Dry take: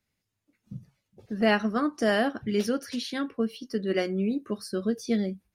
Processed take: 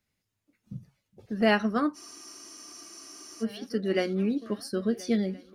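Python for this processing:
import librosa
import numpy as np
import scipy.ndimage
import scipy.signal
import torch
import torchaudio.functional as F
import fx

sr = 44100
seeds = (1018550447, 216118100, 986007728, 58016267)

y = fx.echo_swing(x, sr, ms=1371, ratio=3, feedback_pct=32, wet_db=-21.0)
y = fx.spec_freeze(y, sr, seeds[0], at_s=1.97, hold_s=1.46)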